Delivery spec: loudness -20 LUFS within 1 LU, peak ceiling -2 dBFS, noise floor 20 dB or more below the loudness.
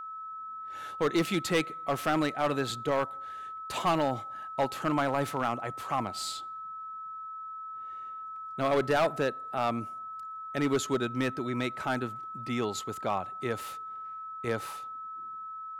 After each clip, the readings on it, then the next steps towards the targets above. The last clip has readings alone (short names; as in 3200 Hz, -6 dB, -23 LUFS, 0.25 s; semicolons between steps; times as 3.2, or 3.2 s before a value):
clipped 0.8%; flat tops at -20.5 dBFS; steady tone 1300 Hz; tone level -38 dBFS; loudness -32.0 LUFS; peak -20.5 dBFS; loudness target -20.0 LUFS
-> clip repair -20.5 dBFS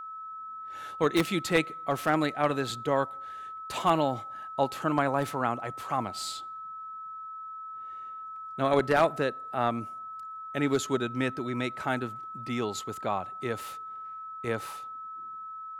clipped 0.0%; steady tone 1300 Hz; tone level -38 dBFS
-> notch 1300 Hz, Q 30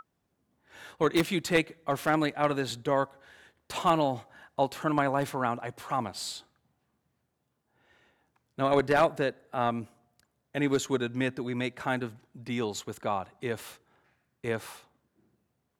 steady tone none; loudness -30.0 LUFS; peak -11.0 dBFS; loudness target -20.0 LUFS
-> gain +10 dB; limiter -2 dBFS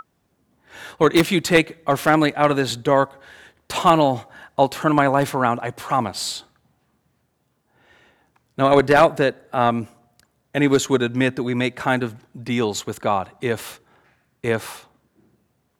loudness -20.0 LUFS; peak -2.0 dBFS; noise floor -68 dBFS